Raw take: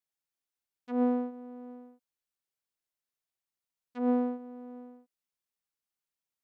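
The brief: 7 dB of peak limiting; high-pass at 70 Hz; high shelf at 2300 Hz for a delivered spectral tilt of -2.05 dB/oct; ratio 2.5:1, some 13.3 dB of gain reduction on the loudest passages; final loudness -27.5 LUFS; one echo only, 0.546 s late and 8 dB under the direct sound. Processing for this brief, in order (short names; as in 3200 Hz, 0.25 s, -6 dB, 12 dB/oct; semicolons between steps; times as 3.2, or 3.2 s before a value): HPF 70 Hz; high shelf 2300 Hz +6.5 dB; compressor 2.5:1, threshold -43 dBFS; limiter -38 dBFS; echo 0.546 s -8 dB; gain +21 dB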